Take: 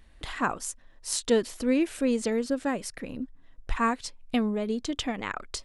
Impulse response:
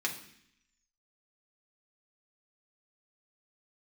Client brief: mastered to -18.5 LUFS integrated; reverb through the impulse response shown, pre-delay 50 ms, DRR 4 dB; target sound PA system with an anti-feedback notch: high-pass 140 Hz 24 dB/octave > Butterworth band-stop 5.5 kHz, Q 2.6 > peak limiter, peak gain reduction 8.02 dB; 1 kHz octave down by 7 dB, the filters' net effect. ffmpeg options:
-filter_complex "[0:a]equalizer=f=1000:t=o:g=-9,asplit=2[s0][s1];[1:a]atrim=start_sample=2205,adelay=50[s2];[s1][s2]afir=irnorm=-1:irlink=0,volume=0.335[s3];[s0][s3]amix=inputs=2:normalize=0,highpass=f=140:w=0.5412,highpass=f=140:w=1.3066,asuperstop=centerf=5500:order=8:qfactor=2.6,volume=5.01,alimiter=limit=0.422:level=0:latency=1"

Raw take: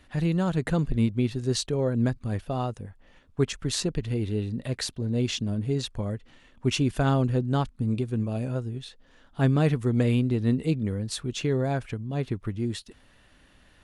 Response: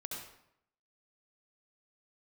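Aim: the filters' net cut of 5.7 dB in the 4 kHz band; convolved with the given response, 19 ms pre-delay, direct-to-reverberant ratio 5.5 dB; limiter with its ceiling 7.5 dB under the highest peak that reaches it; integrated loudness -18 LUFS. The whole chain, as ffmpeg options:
-filter_complex "[0:a]equalizer=f=4000:t=o:g=-7,alimiter=limit=0.126:level=0:latency=1,asplit=2[s0][s1];[1:a]atrim=start_sample=2205,adelay=19[s2];[s1][s2]afir=irnorm=-1:irlink=0,volume=0.562[s3];[s0][s3]amix=inputs=2:normalize=0,volume=3.35"

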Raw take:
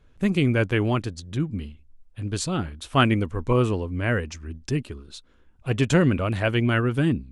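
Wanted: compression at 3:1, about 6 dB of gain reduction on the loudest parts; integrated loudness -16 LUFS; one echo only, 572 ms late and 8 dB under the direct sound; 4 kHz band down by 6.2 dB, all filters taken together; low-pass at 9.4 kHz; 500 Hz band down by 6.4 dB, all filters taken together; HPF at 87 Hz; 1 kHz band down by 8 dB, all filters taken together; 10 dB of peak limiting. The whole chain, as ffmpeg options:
-af "highpass=87,lowpass=9400,equalizer=f=500:t=o:g=-6.5,equalizer=f=1000:t=o:g=-9,equalizer=f=4000:t=o:g=-8.5,acompressor=threshold=0.0562:ratio=3,alimiter=level_in=1.19:limit=0.0631:level=0:latency=1,volume=0.841,aecho=1:1:572:0.398,volume=9.44"

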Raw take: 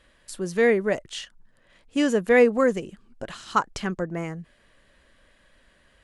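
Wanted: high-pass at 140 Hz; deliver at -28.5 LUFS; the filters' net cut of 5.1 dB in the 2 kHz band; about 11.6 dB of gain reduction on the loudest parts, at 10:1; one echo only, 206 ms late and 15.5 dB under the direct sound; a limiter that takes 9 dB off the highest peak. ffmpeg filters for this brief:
-af "highpass=140,equalizer=f=2000:t=o:g=-6,acompressor=threshold=0.0562:ratio=10,alimiter=limit=0.0668:level=0:latency=1,aecho=1:1:206:0.168,volume=2"

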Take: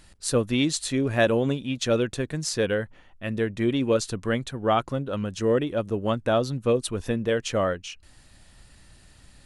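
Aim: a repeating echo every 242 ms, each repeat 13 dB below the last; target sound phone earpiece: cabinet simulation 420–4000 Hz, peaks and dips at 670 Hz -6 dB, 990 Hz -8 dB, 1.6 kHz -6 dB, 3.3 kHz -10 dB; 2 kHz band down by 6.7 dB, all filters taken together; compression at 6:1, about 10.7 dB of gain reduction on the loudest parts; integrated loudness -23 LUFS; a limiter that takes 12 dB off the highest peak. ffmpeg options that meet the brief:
-af "equalizer=f=2000:t=o:g=-3,acompressor=threshold=0.0355:ratio=6,alimiter=level_in=1.12:limit=0.0631:level=0:latency=1,volume=0.891,highpass=420,equalizer=f=670:t=q:w=4:g=-6,equalizer=f=990:t=q:w=4:g=-8,equalizer=f=1600:t=q:w=4:g=-6,equalizer=f=3300:t=q:w=4:g=-10,lowpass=f=4000:w=0.5412,lowpass=f=4000:w=1.3066,aecho=1:1:242|484|726:0.224|0.0493|0.0108,volume=8.41"

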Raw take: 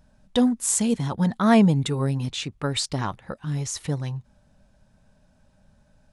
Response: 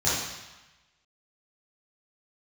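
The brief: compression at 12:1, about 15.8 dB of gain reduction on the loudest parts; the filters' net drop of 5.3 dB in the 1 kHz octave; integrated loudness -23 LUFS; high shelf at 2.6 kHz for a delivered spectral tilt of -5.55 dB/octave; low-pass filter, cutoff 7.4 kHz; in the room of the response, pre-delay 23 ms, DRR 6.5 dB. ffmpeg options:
-filter_complex "[0:a]lowpass=7400,equalizer=f=1000:t=o:g=-6.5,highshelf=f=2600:g=-8,acompressor=threshold=0.0355:ratio=12,asplit=2[s0][s1];[1:a]atrim=start_sample=2205,adelay=23[s2];[s1][s2]afir=irnorm=-1:irlink=0,volume=0.1[s3];[s0][s3]amix=inputs=2:normalize=0,volume=3.16"

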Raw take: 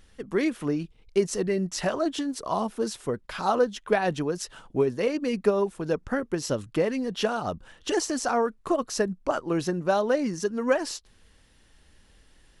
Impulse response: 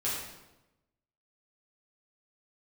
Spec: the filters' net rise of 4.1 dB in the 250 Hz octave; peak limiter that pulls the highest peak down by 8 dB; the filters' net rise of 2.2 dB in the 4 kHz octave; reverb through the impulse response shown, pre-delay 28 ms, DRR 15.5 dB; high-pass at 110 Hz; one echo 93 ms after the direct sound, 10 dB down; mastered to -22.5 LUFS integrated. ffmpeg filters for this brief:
-filter_complex "[0:a]highpass=110,equalizer=f=250:t=o:g=5.5,equalizer=f=4000:t=o:g=3,alimiter=limit=0.168:level=0:latency=1,aecho=1:1:93:0.316,asplit=2[s0][s1];[1:a]atrim=start_sample=2205,adelay=28[s2];[s1][s2]afir=irnorm=-1:irlink=0,volume=0.0794[s3];[s0][s3]amix=inputs=2:normalize=0,volume=1.5"

